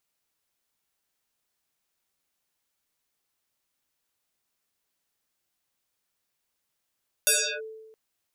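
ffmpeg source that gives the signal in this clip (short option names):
-f lavfi -i "aevalsrc='0.15*pow(10,-3*t/1.17)*sin(2*PI*440*t+12*clip(1-t/0.34,0,1)*sin(2*PI*2.36*440*t))':d=0.67:s=44100"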